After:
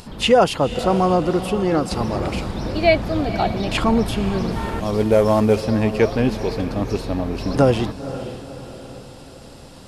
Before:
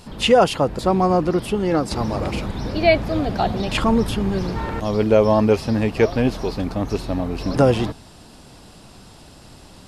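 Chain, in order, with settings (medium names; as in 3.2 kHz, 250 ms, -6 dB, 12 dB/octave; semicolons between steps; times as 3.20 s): 4.51–5.61 s: CVSD coder 64 kbps; echo that smears into a reverb 506 ms, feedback 50%, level -12.5 dB; upward compressor, threshold -38 dBFS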